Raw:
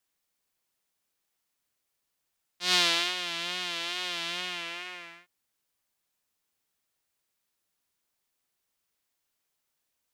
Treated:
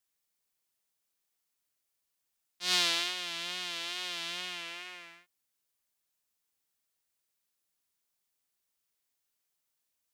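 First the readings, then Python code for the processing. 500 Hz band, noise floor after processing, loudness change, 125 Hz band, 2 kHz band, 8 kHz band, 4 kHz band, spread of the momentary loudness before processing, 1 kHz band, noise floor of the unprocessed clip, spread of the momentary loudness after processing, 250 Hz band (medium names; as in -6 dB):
-6.0 dB, -83 dBFS, -3.5 dB, -6.0 dB, -5.0 dB, -2.0 dB, -3.5 dB, 16 LU, -5.5 dB, -81 dBFS, 15 LU, -6.0 dB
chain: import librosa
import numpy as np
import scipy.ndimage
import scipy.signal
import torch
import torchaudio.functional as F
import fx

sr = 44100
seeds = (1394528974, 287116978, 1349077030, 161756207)

y = fx.high_shelf(x, sr, hz=4000.0, db=5.5)
y = F.gain(torch.from_numpy(y), -6.0).numpy()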